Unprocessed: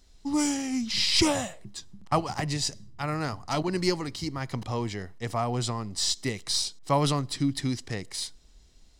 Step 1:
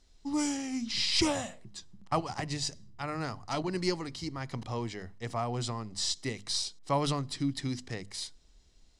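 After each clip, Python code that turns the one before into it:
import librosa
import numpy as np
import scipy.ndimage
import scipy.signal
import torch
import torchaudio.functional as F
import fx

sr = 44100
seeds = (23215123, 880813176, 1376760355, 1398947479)

y = scipy.signal.sosfilt(scipy.signal.butter(2, 9400.0, 'lowpass', fs=sr, output='sos'), x)
y = fx.hum_notches(y, sr, base_hz=50, count=5)
y = y * 10.0 ** (-4.5 / 20.0)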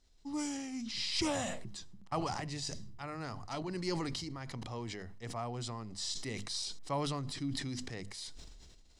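y = fx.sustainer(x, sr, db_per_s=26.0)
y = y * 10.0 ** (-7.0 / 20.0)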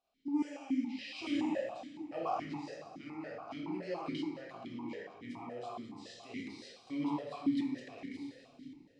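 y = fx.echo_split(x, sr, split_hz=360.0, low_ms=763, high_ms=204, feedback_pct=52, wet_db=-13.0)
y = fx.rev_plate(y, sr, seeds[0], rt60_s=1.3, hf_ratio=0.5, predelay_ms=0, drr_db=-4.0)
y = fx.vowel_held(y, sr, hz=7.1)
y = y * 10.0 ** (4.5 / 20.0)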